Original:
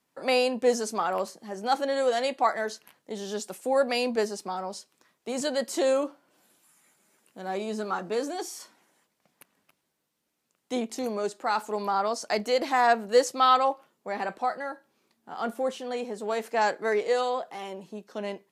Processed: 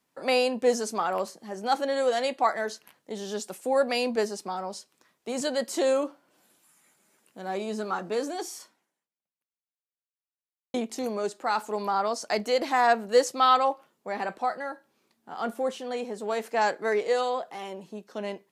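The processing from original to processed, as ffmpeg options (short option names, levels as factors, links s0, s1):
-filter_complex "[0:a]asplit=2[s0][s1];[s0]atrim=end=10.74,asetpts=PTS-STARTPTS,afade=t=out:st=8.56:d=2.18:c=exp[s2];[s1]atrim=start=10.74,asetpts=PTS-STARTPTS,afade=t=in:d=0.004:c=hsin[s3];[s2][s3]concat=n=2:v=0:a=1"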